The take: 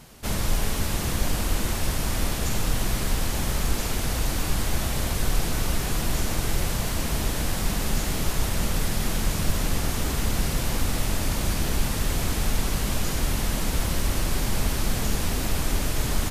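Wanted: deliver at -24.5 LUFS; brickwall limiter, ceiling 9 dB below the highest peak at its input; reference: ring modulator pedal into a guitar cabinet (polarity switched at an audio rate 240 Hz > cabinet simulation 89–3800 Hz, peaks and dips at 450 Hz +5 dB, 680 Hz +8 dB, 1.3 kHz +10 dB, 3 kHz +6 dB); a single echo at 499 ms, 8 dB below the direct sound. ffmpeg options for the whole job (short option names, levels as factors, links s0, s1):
-af "alimiter=limit=0.126:level=0:latency=1,aecho=1:1:499:0.398,aeval=exprs='val(0)*sgn(sin(2*PI*240*n/s))':c=same,highpass=89,equalizer=f=450:t=q:w=4:g=5,equalizer=f=680:t=q:w=4:g=8,equalizer=f=1300:t=q:w=4:g=10,equalizer=f=3000:t=q:w=4:g=6,lowpass=f=3800:w=0.5412,lowpass=f=3800:w=1.3066,volume=0.944"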